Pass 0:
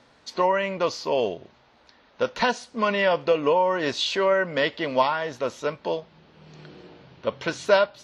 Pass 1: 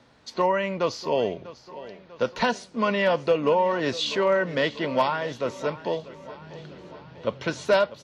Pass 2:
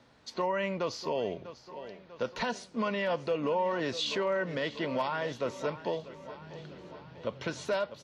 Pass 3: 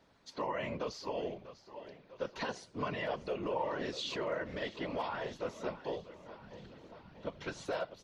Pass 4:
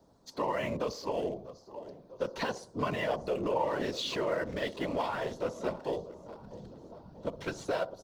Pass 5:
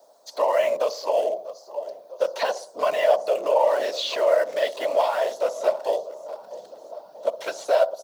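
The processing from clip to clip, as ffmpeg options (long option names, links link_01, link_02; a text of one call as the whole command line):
ffmpeg -i in.wav -filter_complex "[0:a]equalizer=frequency=110:width=0.4:gain=5.5,aecho=1:1:645|1290|1935|2580|3225:0.141|0.0805|0.0459|0.0262|0.0149,acrossover=split=220|2600[link_01][link_02][link_03];[link_02]volume=11.5dB,asoftclip=hard,volume=-11.5dB[link_04];[link_01][link_04][link_03]amix=inputs=3:normalize=0,volume=-2dB" out.wav
ffmpeg -i in.wav -af "alimiter=limit=-18dB:level=0:latency=1:release=93,volume=-4dB" out.wav
ffmpeg -i in.wav -af "afftfilt=real='hypot(re,im)*cos(2*PI*random(0))':imag='hypot(re,im)*sin(2*PI*random(1))':win_size=512:overlap=0.75" out.wav
ffmpeg -i in.wav -filter_complex "[0:a]acrossover=split=220|1100|4600[link_01][link_02][link_03][link_04];[link_02]aecho=1:1:60|120|180|240|300:0.224|0.11|0.0538|0.0263|0.0129[link_05];[link_03]aeval=exprs='sgn(val(0))*max(abs(val(0))-0.00141,0)':channel_layout=same[link_06];[link_01][link_05][link_06][link_04]amix=inputs=4:normalize=0,volume=5dB" out.wav
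ffmpeg -i in.wav -filter_complex "[0:a]acrossover=split=5100[link_01][link_02];[link_02]acompressor=threshold=-57dB:ratio=4:attack=1:release=60[link_03];[link_01][link_03]amix=inputs=2:normalize=0,highpass=frequency=610:width_type=q:width=4.9,crystalizer=i=3:c=0,volume=2.5dB" out.wav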